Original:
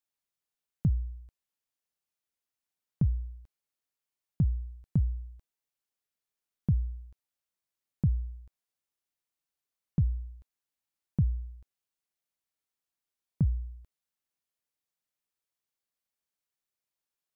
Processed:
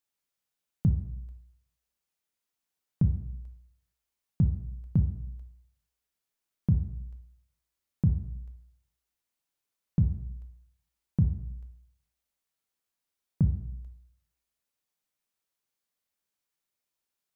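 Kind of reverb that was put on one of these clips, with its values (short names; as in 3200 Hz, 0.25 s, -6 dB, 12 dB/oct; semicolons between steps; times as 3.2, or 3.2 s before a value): plate-style reverb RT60 0.76 s, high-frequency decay 0.95×, DRR 5.5 dB; gain +2 dB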